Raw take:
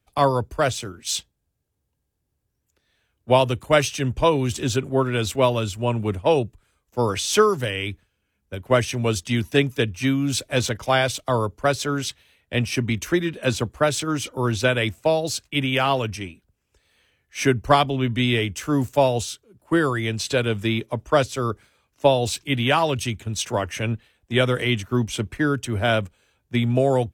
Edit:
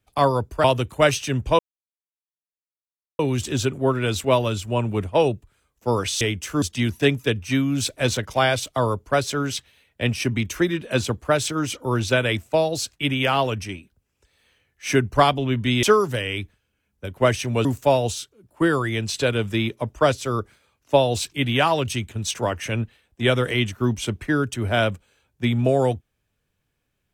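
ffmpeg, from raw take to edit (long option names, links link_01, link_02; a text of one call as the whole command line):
ffmpeg -i in.wav -filter_complex "[0:a]asplit=7[link_01][link_02][link_03][link_04][link_05][link_06][link_07];[link_01]atrim=end=0.642[link_08];[link_02]atrim=start=3.348:end=4.3,asetpts=PTS-STARTPTS,afade=type=out:start_time=0.948:duration=0.004:curve=hsin,apad=pad_dur=1.6[link_09];[link_03]atrim=start=4.3:end=7.322,asetpts=PTS-STARTPTS,afade=type=in:duration=0.004:curve=hsin[link_10];[link_04]atrim=start=18.348:end=18.762[link_11];[link_05]atrim=start=9.138:end=18.352[link_12];[link_06]atrim=start=7.318:end=9.142[link_13];[link_07]atrim=start=18.758[link_14];[link_09][link_10]concat=n=2:v=0:a=1[link_15];[link_08][link_15]acrossfade=duration=0.004:curve1=hsin:curve2=hsin[link_16];[link_16][link_11]acrossfade=duration=0.004:curve1=hsin:curve2=hsin[link_17];[link_17][link_12]acrossfade=duration=0.004:curve1=hsin:curve2=hsin[link_18];[link_18][link_13]acrossfade=duration=0.004:curve1=hsin:curve2=hsin[link_19];[link_19][link_14]acrossfade=duration=0.004:curve1=hsin:curve2=hsin" out.wav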